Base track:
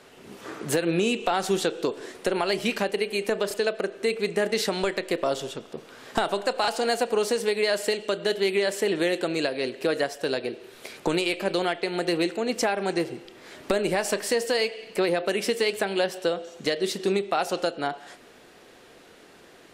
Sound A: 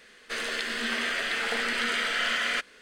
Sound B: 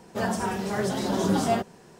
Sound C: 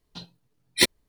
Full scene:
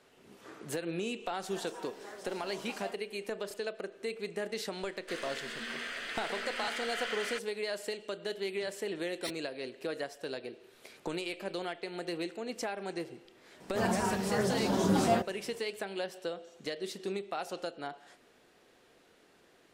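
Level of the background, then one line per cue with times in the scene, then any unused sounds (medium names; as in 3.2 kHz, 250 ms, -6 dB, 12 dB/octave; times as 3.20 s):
base track -12 dB
1.34 s: add B -17 dB + high-pass 490 Hz
4.78 s: add A -10.5 dB
8.45 s: add C -15 dB + peak limiter -13 dBFS
13.60 s: add B -3.5 dB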